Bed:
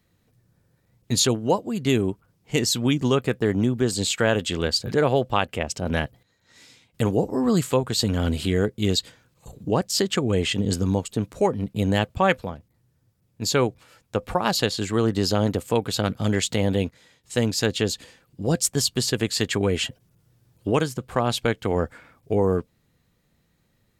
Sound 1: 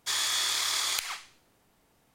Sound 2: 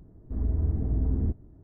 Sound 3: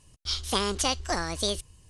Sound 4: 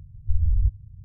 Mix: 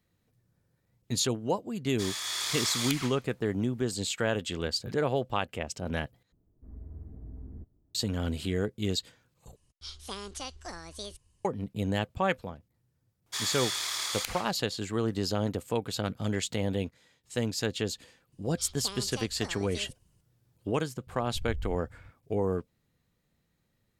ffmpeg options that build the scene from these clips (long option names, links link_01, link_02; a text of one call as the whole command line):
ffmpeg -i bed.wav -i cue0.wav -i cue1.wav -i cue2.wav -i cue3.wav -filter_complex "[1:a]asplit=2[link_01][link_02];[3:a]asplit=2[link_03][link_04];[0:a]volume=-8dB[link_05];[link_01]dynaudnorm=framelen=170:gausssize=5:maxgain=6.5dB[link_06];[2:a]aemphasis=mode=production:type=50fm[link_07];[4:a]acompressor=threshold=-22dB:ratio=6:attack=3.2:release=140:knee=1:detection=peak[link_08];[link_05]asplit=3[link_09][link_10][link_11];[link_09]atrim=end=6.324[link_12];[link_07]atrim=end=1.63,asetpts=PTS-STARTPTS,volume=-17.5dB[link_13];[link_10]atrim=start=7.946:end=9.564[link_14];[link_03]atrim=end=1.89,asetpts=PTS-STARTPTS,volume=-13dB[link_15];[link_11]atrim=start=11.446[link_16];[link_06]atrim=end=2.14,asetpts=PTS-STARTPTS,volume=-8.5dB,afade=type=in:duration=0.004:curve=hsin,afade=type=out:start_time=2.136:duration=0.004:curve=hsin,adelay=1920[link_17];[link_02]atrim=end=2.14,asetpts=PTS-STARTPTS,volume=-4dB,afade=type=in:duration=0.004:curve=hsin,afade=type=out:start_time=2.136:duration=0.004:curve=hsin,adelay=13260[link_18];[link_04]atrim=end=1.89,asetpts=PTS-STARTPTS,volume=-14.5dB,afade=type=in:duration=0.004:curve=hsin,afade=type=out:start_time=1.886:duration=0.004:curve=hsin,adelay=18320[link_19];[link_08]atrim=end=1.04,asetpts=PTS-STARTPTS,volume=-9dB,afade=type=in:duration=0.004:curve=hsin,afade=type=out:start_time=1.036:duration=0.004:curve=hsin,adelay=21070[link_20];[link_12][link_13]acrossfade=duration=0.004:curve1=hsin:curve2=hsin[link_21];[link_21][link_14]acrossfade=duration=0.004:curve1=hsin:curve2=hsin[link_22];[link_22][link_15]acrossfade=duration=0.004:curve1=hsin:curve2=hsin[link_23];[link_23][link_16]acrossfade=duration=0.004:curve1=hsin:curve2=hsin[link_24];[link_24][link_17][link_18][link_19][link_20]amix=inputs=5:normalize=0" out.wav